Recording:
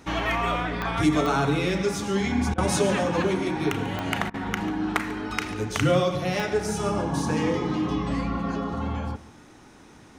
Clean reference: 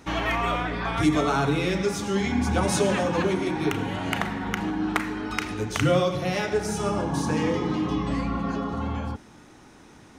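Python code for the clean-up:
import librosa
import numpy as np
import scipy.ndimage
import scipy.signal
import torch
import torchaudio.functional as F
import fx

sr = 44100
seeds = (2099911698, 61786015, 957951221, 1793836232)

y = fx.fix_declick_ar(x, sr, threshold=10.0)
y = fx.fix_interpolate(y, sr, at_s=(2.54, 4.3), length_ms=39.0)
y = fx.fix_echo_inverse(y, sr, delay_ms=143, level_db=-18.0)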